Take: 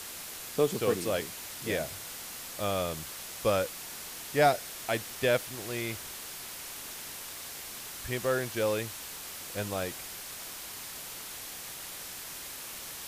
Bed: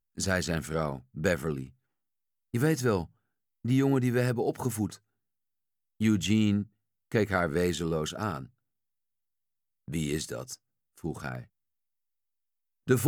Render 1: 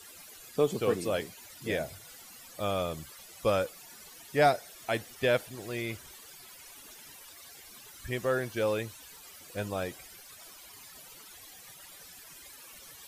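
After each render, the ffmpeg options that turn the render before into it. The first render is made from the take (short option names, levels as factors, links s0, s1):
-af "afftdn=nr=15:nf=-43"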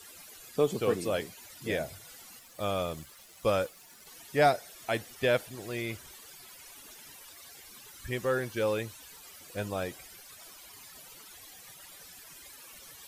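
-filter_complex "[0:a]asettb=1/sr,asplit=3[s0][s1][s2];[s0]atrim=end=2.394[s3];[s1]atrim=start=2.39:end=4.07,asetpts=PTS-STARTPTS,afade=t=in:d=0.004:c=qsin,afade=t=out:st=1.676:d=0.004:c=qsin,aeval=exprs='sgn(val(0))*max(abs(val(0))-0.00158,0)':c=same[s4];[s2]atrim=start=4.066[s5];[s3][s4]acrossfade=d=0.004:c1=hsin:c2=qsin[s6];[s6][s5]acrossfade=d=0.004:c1=qsin:c2=hsin,asettb=1/sr,asplit=3[s7][s8][s9];[s7]atrim=end=7.674[s10];[s8]atrim=start=7.67:end=8.78,asetpts=PTS-STARTPTS,afade=t=in:d=0.004:c=qsin,afade=t=out:st=1.106:d=0.004:c=qsin,asuperstop=centerf=670:order=4:qfactor=7.7[s11];[s9]atrim=start=8.776[s12];[s10][s11]acrossfade=d=0.004:c1=hsin:c2=qsin[s13];[s13][s12]acrossfade=d=0.004:c1=qsin:c2=hsin"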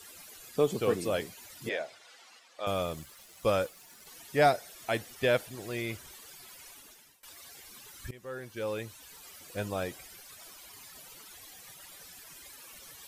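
-filter_complex "[0:a]asettb=1/sr,asplit=3[s0][s1][s2];[s0]atrim=end=1.694[s3];[s1]atrim=start=1.69:end=2.67,asetpts=PTS-STARTPTS,afade=t=in:d=0.004:c=qsin,afade=t=out:st=0.976:d=0.004:c=qsin,highpass=510,lowpass=4800[s4];[s2]atrim=start=2.666[s5];[s3][s4]acrossfade=d=0.004:c1=hsin:c2=qsin[s6];[s6][s5]acrossfade=d=0.004:c1=qsin:c2=hsin,asplit=3[s7][s8][s9];[s7]atrim=end=7.23,asetpts=PTS-STARTPTS,afade=t=out:st=6.67:d=0.56:silence=0.0707946[s10];[s8]atrim=start=7.23:end=8.11,asetpts=PTS-STARTPTS,afade=t=in:d=0.004:c=hsin:silence=0.0707946,afade=t=out:st=0.876:d=0.004:c=hsin:silence=0.0944061[s11];[s9]atrim=start=8.11,asetpts=PTS-STARTPTS,afade=t=in:d=1.13:silence=0.0944061[s12];[s10][s11][s12]concat=n=3:v=0:a=1"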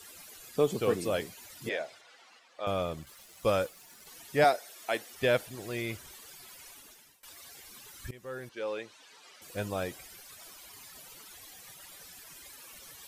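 -filter_complex "[0:a]asettb=1/sr,asplit=3[s0][s1][s2];[s0]atrim=end=2.014[s3];[s1]atrim=start=2.01:end=3.07,asetpts=PTS-STARTPTS,afade=t=in:d=0.004:c=qsin,afade=t=out:st=1.056:d=0.004:c=qsin,aemphasis=mode=reproduction:type=cd[s4];[s2]atrim=start=3.066[s5];[s3][s4]acrossfade=d=0.004:c1=hsin:c2=qsin[s6];[s6][s5]acrossfade=d=0.004:c1=qsin:c2=hsin,asettb=1/sr,asplit=3[s7][s8][s9];[s7]atrim=end=4.444[s10];[s8]atrim=start=4.44:end=5.14,asetpts=PTS-STARTPTS,afade=t=in:d=0.004:c=qsin,afade=t=out:st=0.696:d=0.004:c=qsin,highpass=320[s11];[s9]atrim=start=5.136[s12];[s10][s11]acrossfade=d=0.004:c1=hsin:c2=qsin[s13];[s13][s12]acrossfade=d=0.004:c1=qsin:c2=hsin,asettb=1/sr,asplit=3[s14][s15][s16];[s14]atrim=end=8.494[s17];[s15]atrim=start=8.49:end=9.42,asetpts=PTS-STARTPTS,afade=t=in:d=0.004:c=qsin,afade=t=out:st=0.926:d=0.004:c=qsin,highpass=320,lowpass=5200[s18];[s16]atrim=start=9.416[s19];[s17][s18]acrossfade=d=0.004:c1=hsin:c2=qsin[s20];[s20][s19]acrossfade=d=0.004:c1=qsin:c2=hsin"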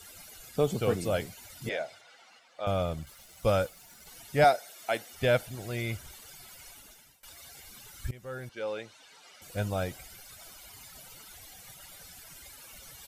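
-af "lowshelf=f=150:g=8.5,aecho=1:1:1.4:0.32"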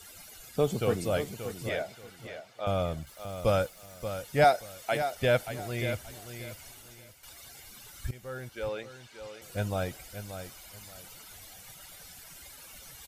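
-af "aecho=1:1:580|1160|1740:0.316|0.0759|0.0182"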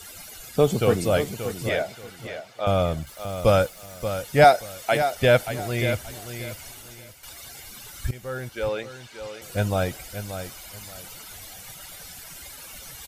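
-af "volume=2.37"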